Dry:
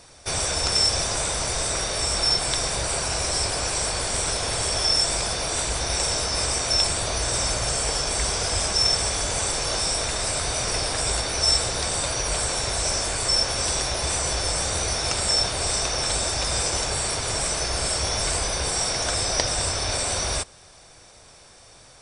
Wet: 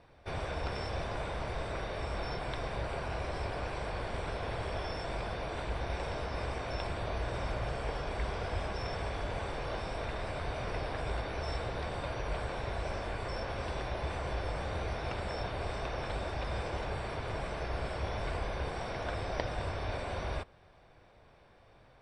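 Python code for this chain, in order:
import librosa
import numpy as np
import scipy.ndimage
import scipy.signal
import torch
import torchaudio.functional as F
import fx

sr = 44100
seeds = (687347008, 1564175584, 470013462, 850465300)

y = fx.air_absorb(x, sr, metres=460.0)
y = fx.notch(y, sr, hz=1300.0, q=22.0)
y = F.gain(torch.from_numpy(y), -6.0).numpy()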